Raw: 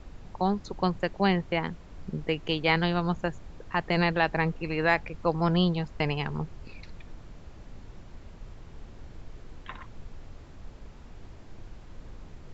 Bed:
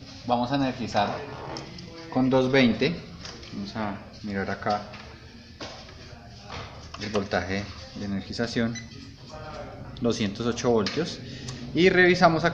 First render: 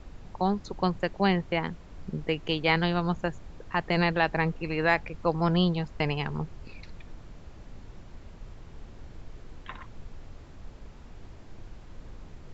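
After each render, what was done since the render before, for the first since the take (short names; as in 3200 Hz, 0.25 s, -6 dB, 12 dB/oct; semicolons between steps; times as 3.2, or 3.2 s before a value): nothing audible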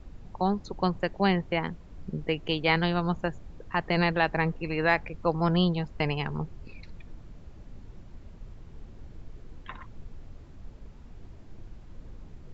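denoiser 6 dB, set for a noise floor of -48 dBFS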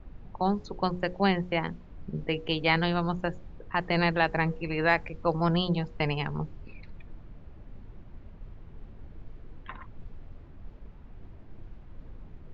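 notches 60/120/180/240/300/360/420/480/540 Hz; low-pass opened by the level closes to 2300 Hz, open at -21 dBFS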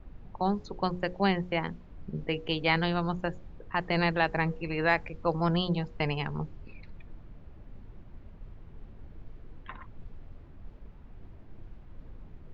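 gain -1.5 dB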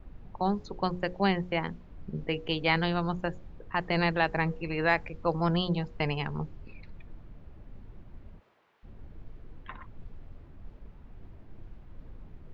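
8.39–8.83 HPF 470 Hz -> 1100 Hz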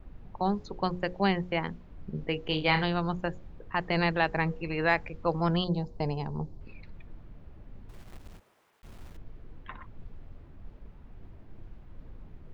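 2.38–2.84 flutter echo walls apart 5.5 m, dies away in 0.25 s; 5.64–6.61 band shelf 2000 Hz -13.5 dB; 7.89–9.17 block floating point 3-bit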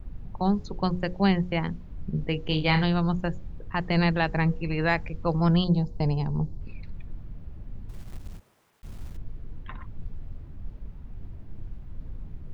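tone controls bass +9 dB, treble +5 dB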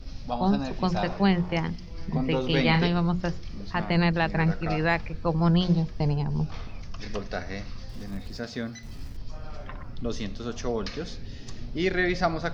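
add bed -7 dB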